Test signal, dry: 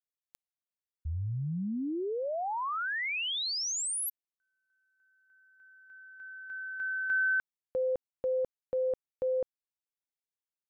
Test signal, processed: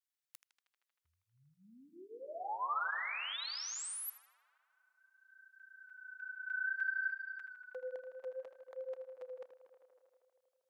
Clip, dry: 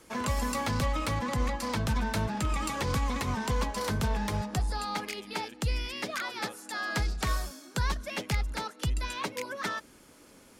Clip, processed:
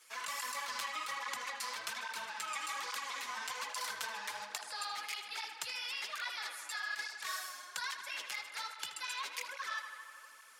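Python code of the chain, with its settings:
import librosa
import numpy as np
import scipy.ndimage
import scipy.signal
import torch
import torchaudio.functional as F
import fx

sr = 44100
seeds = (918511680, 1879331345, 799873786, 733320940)

y = scipy.signal.sosfilt(scipy.signal.butter(2, 1400.0, 'highpass', fs=sr, output='sos'), x)
y = fx.over_compress(y, sr, threshold_db=-37.0, ratio=-0.5)
y = fx.echo_tape(y, sr, ms=79, feedback_pct=86, wet_db=-9, lp_hz=4800.0, drive_db=17.0, wow_cents=7)
y = fx.flanger_cancel(y, sr, hz=1.2, depth_ms=7.8)
y = y * 10.0 ** (1.0 / 20.0)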